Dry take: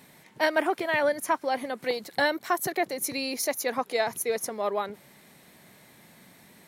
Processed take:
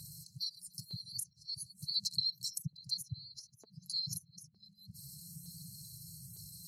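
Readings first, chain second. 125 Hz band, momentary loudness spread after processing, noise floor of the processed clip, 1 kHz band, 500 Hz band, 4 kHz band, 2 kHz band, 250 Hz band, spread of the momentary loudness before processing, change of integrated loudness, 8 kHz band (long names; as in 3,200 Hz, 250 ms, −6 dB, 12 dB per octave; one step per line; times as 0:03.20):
+4.0 dB, 18 LU, −67 dBFS, below −40 dB, below −40 dB, 0.0 dB, below −40 dB, −19.0 dB, 5 LU, −12.0 dB, −8.5 dB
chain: spectral envelope exaggerated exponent 1.5
brickwall limiter −19.5 dBFS, peak gain reduction 8 dB
linear-phase brick-wall band-stop 170–4,000 Hz
auto-filter notch saw up 1.1 Hz 380–5,200 Hz
flanger 0.64 Hz, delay 1.9 ms, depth 4 ms, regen +33%
treble cut that deepens with the level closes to 890 Hz, closed at −37.5 dBFS
high-pass filter 70 Hz
level +17 dB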